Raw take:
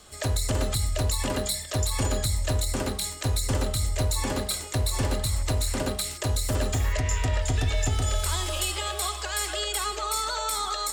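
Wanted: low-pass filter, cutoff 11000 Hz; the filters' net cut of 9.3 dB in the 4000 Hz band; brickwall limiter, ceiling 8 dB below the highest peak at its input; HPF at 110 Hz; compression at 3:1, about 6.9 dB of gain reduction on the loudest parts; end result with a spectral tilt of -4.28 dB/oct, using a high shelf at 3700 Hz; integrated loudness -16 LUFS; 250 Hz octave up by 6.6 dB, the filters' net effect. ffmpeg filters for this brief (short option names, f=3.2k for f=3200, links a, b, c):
-af "highpass=110,lowpass=11k,equalizer=f=250:t=o:g=8,highshelf=f=3.7k:g=-6,equalizer=f=4k:t=o:g=-7.5,acompressor=threshold=-31dB:ratio=3,volume=21dB,alimiter=limit=-6.5dB:level=0:latency=1"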